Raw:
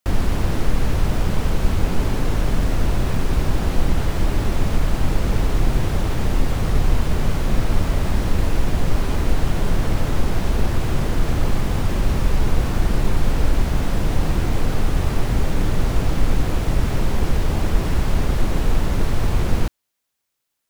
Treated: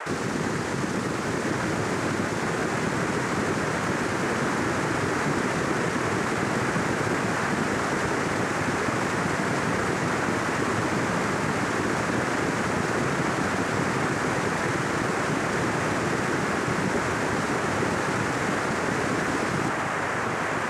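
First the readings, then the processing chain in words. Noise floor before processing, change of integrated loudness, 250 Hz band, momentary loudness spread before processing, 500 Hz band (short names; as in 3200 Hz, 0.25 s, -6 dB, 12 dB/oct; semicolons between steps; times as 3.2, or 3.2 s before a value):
-77 dBFS, -2.5 dB, -0.5 dB, 1 LU, +2.0 dB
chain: whine 1100 Hz -30 dBFS; diffused feedback echo 1.258 s, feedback 70%, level -7 dB; noise vocoder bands 3; in parallel at +1.5 dB: limiter -16 dBFS, peak gain reduction 7.5 dB; on the sum: gain -8.5 dB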